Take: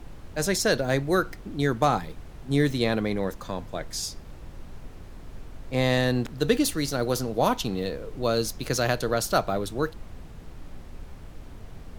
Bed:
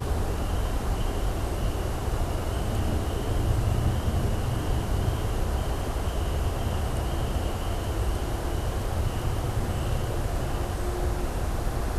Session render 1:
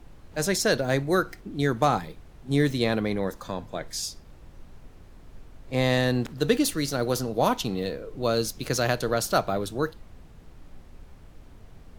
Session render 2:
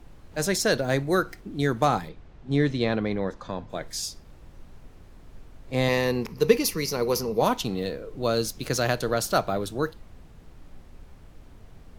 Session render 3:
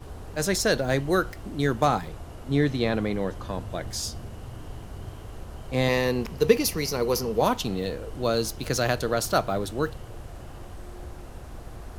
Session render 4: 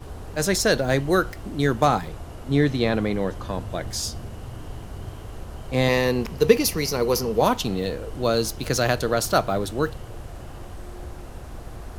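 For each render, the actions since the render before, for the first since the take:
noise reduction from a noise print 6 dB
0:02.09–0:03.70: high-frequency loss of the air 110 metres; 0:05.88–0:07.42: EQ curve with evenly spaced ripples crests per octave 0.83, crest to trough 11 dB
mix in bed −13 dB
level +3 dB

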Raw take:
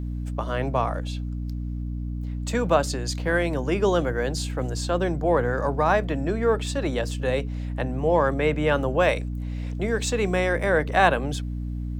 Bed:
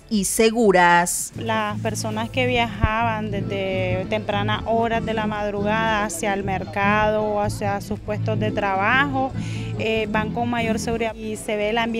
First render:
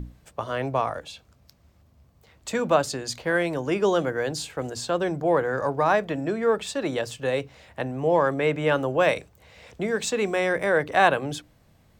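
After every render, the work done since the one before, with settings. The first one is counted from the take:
mains-hum notches 60/120/180/240/300 Hz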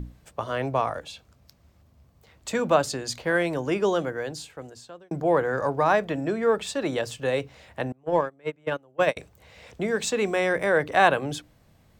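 0:03.63–0:05.11: fade out
0:07.92–0:09.17: noise gate −20 dBFS, range −30 dB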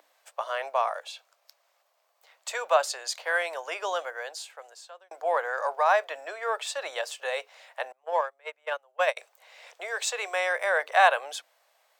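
Butterworth high-pass 580 Hz 36 dB per octave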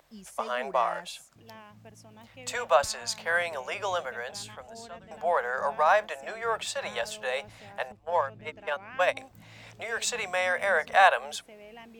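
mix in bed −26.5 dB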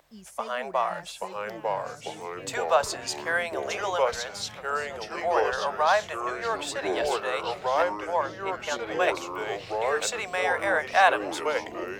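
delay with pitch and tempo change per echo 758 ms, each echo −3 semitones, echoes 3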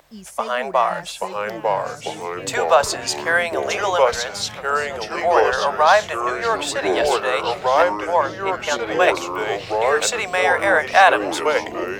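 level +8.5 dB
brickwall limiter −2 dBFS, peak gain reduction 2.5 dB

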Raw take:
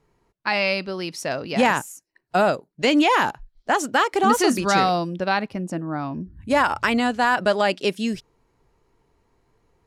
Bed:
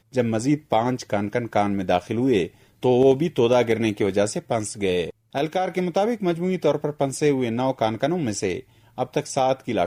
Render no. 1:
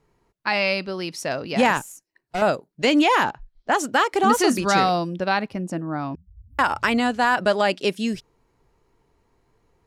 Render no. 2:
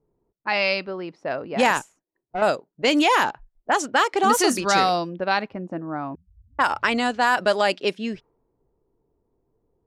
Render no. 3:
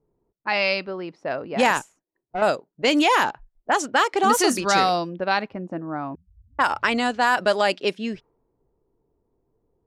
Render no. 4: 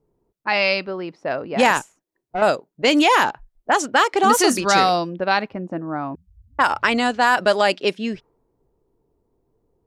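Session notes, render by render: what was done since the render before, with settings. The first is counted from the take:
0:01.77–0:02.42: tube saturation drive 21 dB, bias 0.45; 0:03.24–0:03.72: high-frequency loss of the air 95 metres; 0:06.15–0:06.59: inverse Chebyshev band-stop filter 460–6,700 Hz, stop band 80 dB
low-pass that shuts in the quiet parts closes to 460 Hz, open at −14.5 dBFS; bass and treble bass −7 dB, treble +4 dB
no processing that can be heard
level +3 dB

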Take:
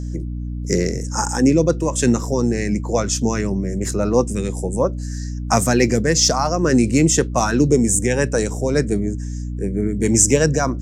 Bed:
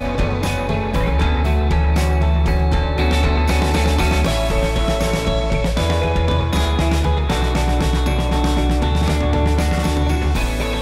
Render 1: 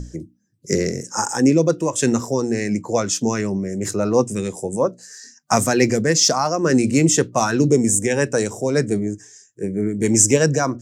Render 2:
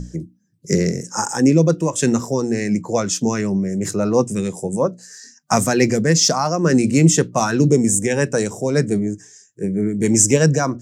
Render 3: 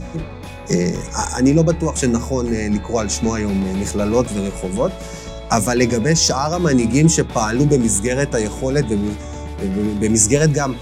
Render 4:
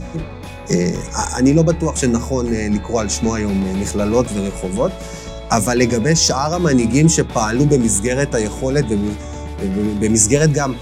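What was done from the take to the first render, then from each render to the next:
mains-hum notches 60/120/180/240/300 Hz
parametric band 170 Hz +8 dB 0.43 octaves
mix in bed −13 dB
level +1 dB; brickwall limiter −1 dBFS, peak gain reduction 1 dB

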